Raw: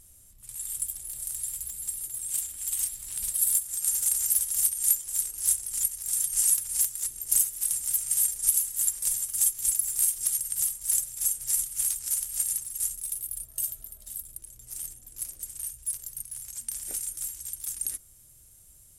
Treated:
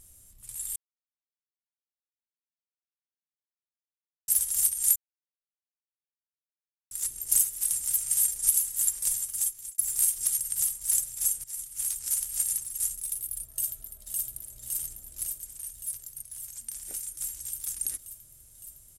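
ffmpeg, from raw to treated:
-filter_complex "[0:a]asplit=2[s0][s1];[s1]afade=t=in:st=13.53:d=0.01,afade=t=out:st=14.21:d=0.01,aecho=0:1:560|1120|1680|2240|2800|3360|3920|4480|5040|5600|6160|6720:0.794328|0.635463|0.50837|0.406696|0.325357|0.260285|0.208228|0.166583|0.133266|0.106613|0.0852903|0.0682323[s2];[s0][s2]amix=inputs=2:normalize=0,asplit=9[s3][s4][s5][s6][s7][s8][s9][s10][s11];[s3]atrim=end=0.76,asetpts=PTS-STARTPTS,afade=t=out:st=0.756:d=0.004:c=hsin[s12];[s4]atrim=start=0.76:end=4.28,asetpts=PTS-STARTPTS,volume=0[s13];[s5]atrim=start=4.28:end=4.96,asetpts=PTS-STARTPTS,afade=t=in:d=0.004:c=hsin,afade=t=out:st=0.676:d=0.004:c=hsin[s14];[s6]atrim=start=4.96:end=6.91,asetpts=PTS-STARTPTS,volume=0[s15];[s7]atrim=start=6.91:end=9.78,asetpts=PTS-STARTPTS,afade=t=in:d=0.004:c=hsin,afade=t=out:st=2.03:d=0.84:c=qsin[s16];[s8]atrim=start=9.78:end=11.44,asetpts=PTS-STARTPTS,afade=t=in:d=0.004:c=hsin,afade=t=out:st=1.656:d=0.004:c=hsin:silence=0.141254[s17];[s9]atrim=start=11.44:end=15.322,asetpts=PTS-STARTPTS,afade=t=in:d=0.66:silence=0.141254[s18];[s10]atrim=start=15.318:end=17.202,asetpts=PTS-STARTPTS,volume=0.631[s19];[s11]atrim=start=17.198[s20];[s12][s13][s14][s15][s16][s17][s18]concat=n=7:v=0:a=1[s21];[s21][s19]acrossfade=d=0.004:c1=hsin:c2=hsin[s22];[s22][s20]acrossfade=d=0.004:c1=hsin:c2=hsin"

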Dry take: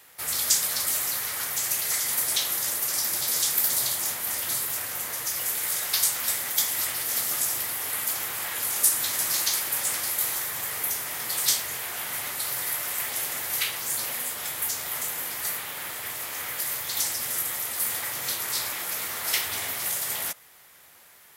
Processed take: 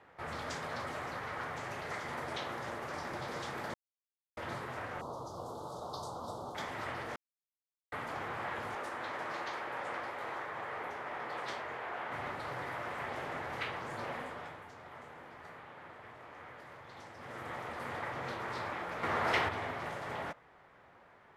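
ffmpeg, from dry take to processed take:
-filter_complex "[0:a]asettb=1/sr,asplit=3[s0][s1][s2];[s0]atrim=end=5.014[s3];[s1]atrim=start=5.01:end=6.55,asetpts=PTS-STARTPTS,afade=t=in:d=0.004:c=qsin,afade=t=out:st=1.536:d=0.004:c=qsin,asuperstop=centerf=2100:order=8:qfactor=0.81[s4];[s2]atrim=start=6.546[s5];[s3][s4]acrossfade=d=0.004:c1=hsin:c2=qsin[s6];[s6][s5]acrossfade=d=0.004:c1=qsin:c2=hsin,asettb=1/sr,asplit=3[s7][s8][s9];[s7]atrim=end=8.754[s10];[s8]atrim=start=8.75:end=12.12,asetpts=PTS-STARTPTS,afade=t=in:d=0.004:c=qsin,afade=t=out:st=3.366:d=0.004:c=qsin,bass=f=250:g=-11,treble=f=4000:g=-6[s11];[s9]atrim=start=12.116[s12];[s10][s11]acrossfade=d=0.004:c1=hsin:c2=qsin[s13];[s13][s12]acrossfade=d=0.004:c1=qsin:c2=hsin,asettb=1/sr,asplit=3[s14][s15][s16];[s14]atrim=end=19.034[s17];[s15]atrim=start=19.03:end=19.49,asetpts=PTS-STARTPTS,afade=t=in:d=0.004:c=qsin,afade=t=out:st=0.456:d=0.004:c=qsin,acontrast=71[s18];[s16]atrim=start=19.486[s19];[s17][s18]acrossfade=d=0.004:c1=hsin:c2=qsin[s20];[s20][s19]acrossfade=d=0.004:c1=qsin:c2=hsin,asplit=7[s21][s22][s23][s24][s25][s26][s27];[s21]atrim=end=3.74,asetpts=PTS-STARTPTS,afade=t=out:st=3.736:d=0.004:c=hsin[s28];[s22]atrim=start=3.74:end=4.37,asetpts=PTS-STARTPTS,volume=0[s29];[s23]atrim=start=4.37:end=7.16,asetpts=PTS-STARTPTS,afade=t=in:d=0.004:c=hsin,afade=t=out:st=2.786:d=0.004:c=hsin[s30];[s24]atrim=start=7.16:end=7.92,asetpts=PTS-STARTPTS,volume=0[s31];[s25]atrim=start=7.92:end=14.64,asetpts=PTS-STARTPTS,afade=t=in:d=0.004:c=hsin,afade=t=out:st=6.28:d=0.44:silence=0.316228[s32];[s26]atrim=start=14.64:end=17.13,asetpts=PTS-STARTPTS,volume=0.316[s33];[s27]atrim=start=17.13,asetpts=PTS-STARTPTS,afade=t=in:d=0.44:silence=0.316228[s34];[s28][s29][s30][s31][s32][s33][s34]concat=n=7:v=0:a=1,lowpass=1200,volume=1.33"

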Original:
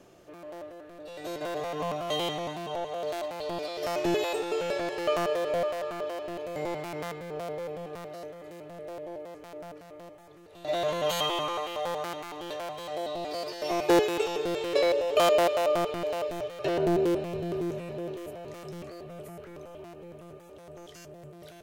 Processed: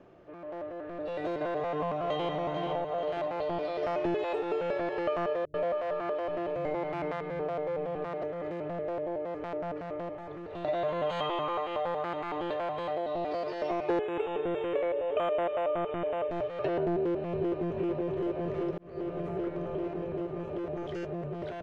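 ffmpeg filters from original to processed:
-filter_complex "[0:a]asplit=2[s0][s1];[s1]afade=t=in:st=1.59:d=0.01,afade=t=out:st=2.4:d=0.01,aecho=0:1:440|880|1320|1760|2200|2640|3080|3520:0.398107|0.238864|0.143319|0.0859911|0.0515947|0.0309568|0.0185741|0.0111445[s2];[s0][s2]amix=inputs=2:normalize=0,asettb=1/sr,asplit=3[s3][s4][s5];[s3]atrim=end=5.454[s6];[s4]atrim=start=5.45:end=8.22,asetpts=PTS-STARTPTS,afade=t=in:d=0.004:c=qsin,afade=t=out:st=2.766:d=0.004:c=qsin,acrossover=split=170[s7][s8];[s8]adelay=90[s9];[s7][s9]amix=inputs=2:normalize=0,atrim=end_sample=122157[s10];[s5]atrim=start=8.216[s11];[s6][s10]acrossfade=d=0.004:c1=hsin:c2=qsin[s12];[s12][s11]acrossfade=d=0.004:c1=qsin:c2=hsin,asettb=1/sr,asplit=3[s13][s14][s15];[s13]atrim=end=10.804[s16];[s14]atrim=start=10.8:end=13.07,asetpts=PTS-STARTPTS,afade=t=in:d=0.004:c=qsin,afade=t=out:st=2.266:d=0.004:c=qsin,bandreject=f=5700:w=7.1[s17];[s15]atrim=start=13.066[s18];[s16][s17]acrossfade=d=0.004:c1=hsin:c2=qsin[s19];[s19][s18]acrossfade=d=0.004:c1=qsin:c2=hsin,asettb=1/sr,asplit=3[s20][s21][s22];[s20]atrim=end=13.994[s23];[s21]atrim=start=13.99:end=16.31,asetpts=PTS-STARTPTS,afade=t=in:d=0.004:c=qsin,afade=t=out:st=2.316:d=0.004:c=qsin,asuperstop=centerf=5100:order=20:qfactor=1.6[s24];[s22]atrim=start=16.306[s25];[s23][s24]acrossfade=d=0.004:c1=hsin:c2=qsin[s26];[s26][s25]acrossfade=d=0.004:c1=qsin:c2=hsin,asplit=2[s27][s28];[s28]afade=t=in:st=17.02:d=0.01,afade=t=out:st=17.75:d=0.01,aecho=0:1:390|780|1170|1560|1950|2340|2730|3120|3510|3900|4290|4680:0.668344|0.534675|0.42774|0.342192|0.273754|0.219003|0.175202|0.140162|0.11213|0.0897036|0.0717629|0.0574103[s29];[s27][s29]amix=inputs=2:normalize=0,asplit=2[s30][s31];[s30]atrim=end=18.78,asetpts=PTS-STARTPTS,afade=t=out:st=18.776:d=0.004:c=hsin[s32];[s31]atrim=start=18.78,asetpts=PTS-STARTPTS,afade=t=in:d=0.64[s33];[s32][s33]concat=n=2:v=0:a=1,dynaudnorm=f=160:g=11:m=3.76,lowpass=2000,acompressor=threshold=0.0224:ratio=3"

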